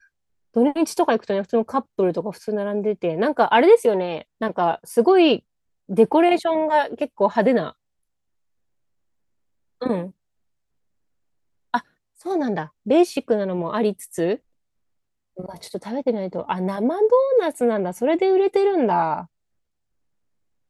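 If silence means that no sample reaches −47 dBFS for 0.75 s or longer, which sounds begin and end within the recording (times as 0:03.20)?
0:09.81–0:10.11
0:11.74–0:14.38
0:15.37–0:19.26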